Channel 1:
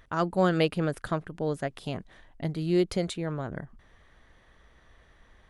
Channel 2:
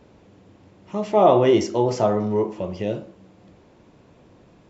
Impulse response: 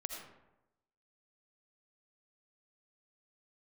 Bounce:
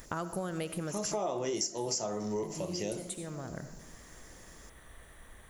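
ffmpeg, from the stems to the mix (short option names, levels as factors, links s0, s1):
-filter_complex "[0:a]acompressor=threshold=0.0158:ratio=4,aexciter=amount=9.9:drive=4.5:freq=7500,volume=1.12,asplit=2[s0][s1];[s1]volume=0.531[s2];[1:a]highpass=120,highshelf=f=2900:g=9,aexciter=amount=9:drive=5.1:freq=5000,volume=0.422,asplit=2[s3][s4];[s4]apad=whole_len=242365[s5];[s0][s5]sidechaincompress=threshold=0.00501:ratio=8:attack=16:release=780[s6];[2:a]atrim=start_sample=2205[s7];[s2][s7]afir=irnorm=-1:irlink=0[s8];[s6][s3][s8]amix=inputs=3:normalize=0,acompressor=threshold=0.0282:ratio=6"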